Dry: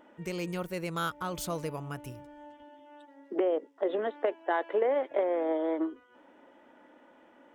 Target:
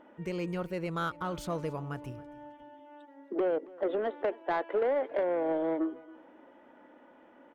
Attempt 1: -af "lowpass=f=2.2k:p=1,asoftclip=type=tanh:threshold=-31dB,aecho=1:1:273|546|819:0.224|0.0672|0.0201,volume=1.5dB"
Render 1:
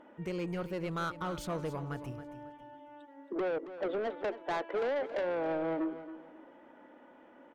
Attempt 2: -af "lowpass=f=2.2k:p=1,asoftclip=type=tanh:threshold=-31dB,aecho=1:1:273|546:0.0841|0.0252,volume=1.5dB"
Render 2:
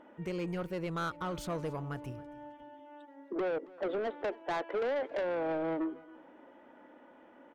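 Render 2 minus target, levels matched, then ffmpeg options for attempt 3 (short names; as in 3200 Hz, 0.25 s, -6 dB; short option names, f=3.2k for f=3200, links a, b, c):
soft clip: distortion +7 dB
-af "lowpass=f=2.2k:p=1,asoftclip=type=tanh:threshold=-24dB,aecho=1:1:273|546:0.0841|0.0252,volume=1.5dB"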